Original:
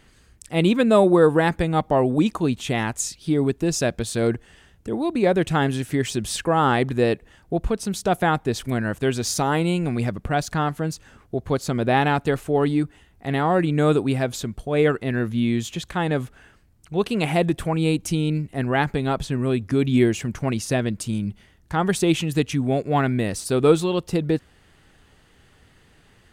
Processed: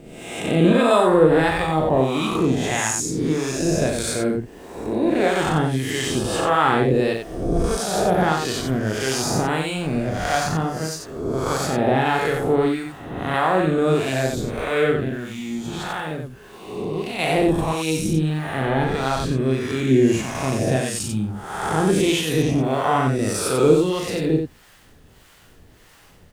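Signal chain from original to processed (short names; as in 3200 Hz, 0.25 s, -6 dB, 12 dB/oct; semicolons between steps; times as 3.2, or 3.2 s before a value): spectral swells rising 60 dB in 1.21 s; 4.13–4.93 bell 3600 Hz -7.5 dB 0.7 oct; 15.04–17.19 compressor, threshold -23 dBFS, peak gain reduction 9 dB; added noise pink -53 dBFS; harmonic tremolo 1.6 Hz, depth 70%, crossover 620 Hz; loudspeakers at several distances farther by 13 m -5 dB, 31 m -5 dB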